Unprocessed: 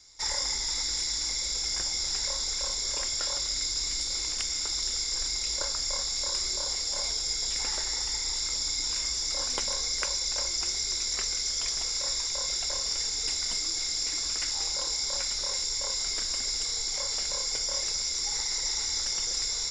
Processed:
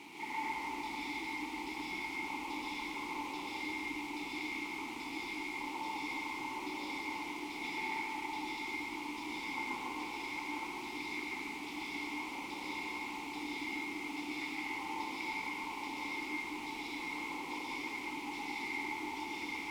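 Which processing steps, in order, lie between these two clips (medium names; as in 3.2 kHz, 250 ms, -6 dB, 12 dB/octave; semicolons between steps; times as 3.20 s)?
peak limiter -21.5 dBFS, peak gain reduction 9 dB; LFO low-pass saw down 1.2 Hz 610–3700 Hz; word length cut 6-bit, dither triangular; vowel filter u; plate-style reverb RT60 2.1 s, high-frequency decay 1×, pre-delay 110 ms, DRR -5.5 dB; trim +5.5 dB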